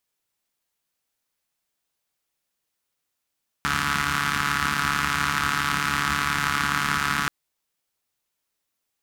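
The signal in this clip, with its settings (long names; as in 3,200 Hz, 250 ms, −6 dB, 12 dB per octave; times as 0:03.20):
pulse-train model of a four-cylinder engine, steady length 3.63 s, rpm 4,300, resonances 81/180/1,300 Hz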